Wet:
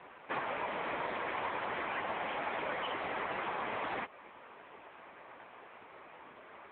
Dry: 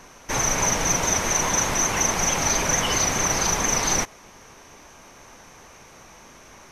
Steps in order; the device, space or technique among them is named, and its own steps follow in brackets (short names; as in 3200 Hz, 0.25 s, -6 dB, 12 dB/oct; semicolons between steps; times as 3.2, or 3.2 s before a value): voicemail (BPF 320–2700 Hz; compressor 10:1, threshold -30 dBFS, peak gain reduction 8.5 dB; AMR-NB 6.7 kbps 8000 Hz)